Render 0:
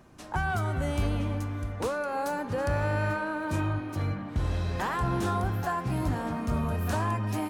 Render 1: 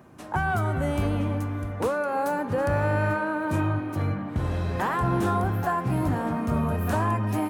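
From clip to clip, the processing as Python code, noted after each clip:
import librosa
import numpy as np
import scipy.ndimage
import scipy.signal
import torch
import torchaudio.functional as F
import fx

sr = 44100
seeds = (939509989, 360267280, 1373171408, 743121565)

y = scipy.signal.sosfilt(scipy.signal.butter(2, 87.0, 'highpass', fs=sr, output='sos'), x)
y = fx.peak_eq(y, sr, hz=5100.0, db=-8.0, octaves=1.9)
y = F.gain(torch.from_numpy(y), 5.0).numpy()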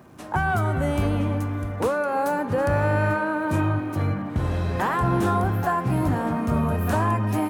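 y = fx.dmg_crackle(x, sr, seeds[0], per_s=320.0, level_db=-54.0)
y = F.gain(torch.from_numpy(y), 2.5).numpy()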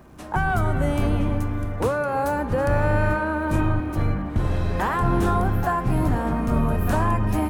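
y = fx.octave_divider(x, sr, octaves=2, level_db=-1.0)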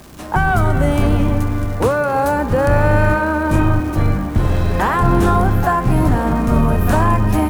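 y = fx.dmg_crackle(x, sr, seeds[1], per_s=350.0, level_db=-37.0)
y = fx.quant_dither(y, sr, seeds[2], bits=10, dither='triangular')
y = F.gain(torch.from_numpy(y), 7.0).numpy()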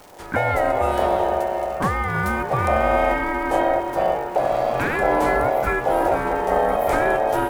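y = x * np.sin(2.0 * np.pi * 650.0 * np.arange(len(x)) / sr)
y = F.gain(torch.from_numpy(y), -3.0).numpy()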